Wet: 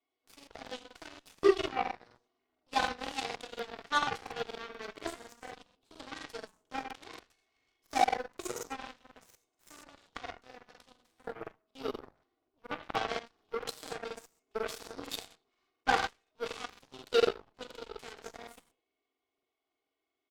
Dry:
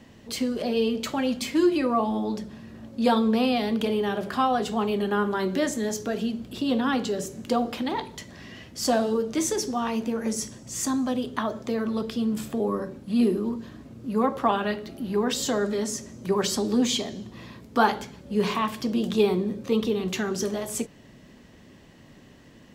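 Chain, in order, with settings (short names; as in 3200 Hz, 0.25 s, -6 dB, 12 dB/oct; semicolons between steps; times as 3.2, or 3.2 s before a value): non-linear reverb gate 0.17 s flat, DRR 2 dB; dynamic EQ 920 Hz, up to -8 dB, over -43 dBFS, Q 3.5; speakerphone echo 0.17 s, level -16 dB; varispeed +12%; three-band isolator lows -23 dB, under 390 Hz, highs -13 dB, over 5300 Hz; notch 1800 Hz, Q 6.5; comb 2.7 ms, depth 96%; added harmonics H 3 -26 dB, 6 -36 dB, 7 -18 dB, 8 -31 dB, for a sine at -7.5 dBFS; crackling interface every 0.24 s, samples 2048, repeat, from 0.38; gain -4.5 dB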